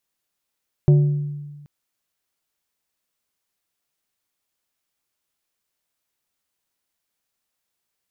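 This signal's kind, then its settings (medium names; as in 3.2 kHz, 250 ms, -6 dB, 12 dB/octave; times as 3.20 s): glass hit plate, length 0.78 s, lowest mode 146 Hz, decay 1.42 s, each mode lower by 10.5 dB, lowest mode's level -8.5 dB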